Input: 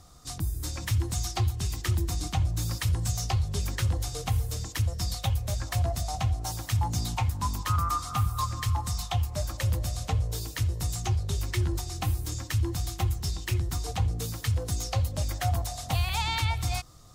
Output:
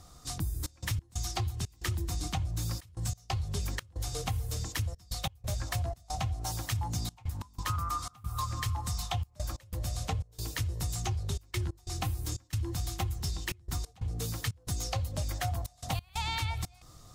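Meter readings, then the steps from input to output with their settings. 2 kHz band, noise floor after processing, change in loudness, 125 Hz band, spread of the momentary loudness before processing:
−3.5 dB, −59 dBFS, −5.5 dB, −6.5 dB, 3 LU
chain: downward compressor, threshold −29 dBFS, peak gain reduction 8 dB
gate pattern "xxxx.x.xxx.xx" 91 BPM −24 dB

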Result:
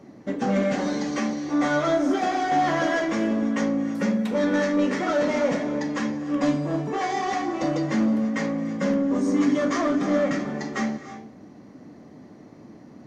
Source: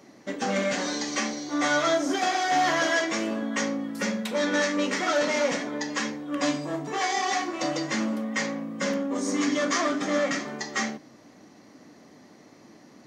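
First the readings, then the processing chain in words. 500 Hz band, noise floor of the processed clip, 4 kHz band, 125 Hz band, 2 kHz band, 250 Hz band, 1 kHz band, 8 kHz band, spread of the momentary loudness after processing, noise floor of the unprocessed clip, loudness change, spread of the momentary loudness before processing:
+2.5 dB, −47 dBFS, −6.5 dB, +8.5 dB, −2.5 dB, +6.0 dB, +1.0 dB, −8.0 dB, 6 LU, −53 dBFS, +2.5 dB, 7 LU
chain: high-shelf EQ 2,100 Hz −11 dB
reverb whose tail is shaped and stops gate 360 ms rising, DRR 12 dB
in parallel at −10.5 dB: soft clipping −26.5 dBFS, distortion −11 dB
on the sum: low-shelf EQ 240 Hz +10 dB

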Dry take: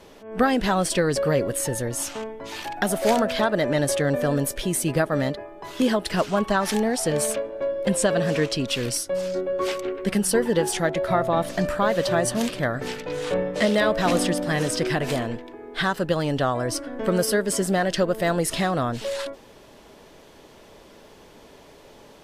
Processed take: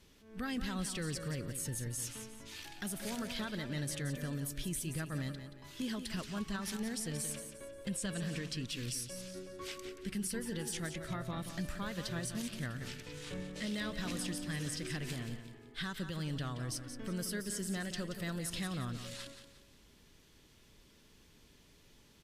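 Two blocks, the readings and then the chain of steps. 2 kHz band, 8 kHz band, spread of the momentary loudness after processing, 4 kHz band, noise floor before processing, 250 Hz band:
−15.5 dB, −12.0 dB, 7 LU, −12.0 dB, −49 dBFS, −14.0 dB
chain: guitar amp tone stack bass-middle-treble 6-0-2
brickwall limiter −34.5 dBFS, peak gain reduction 7.5 dB
repeating echo 177 ms, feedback 36%, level −9.5 dB
level +5 dB

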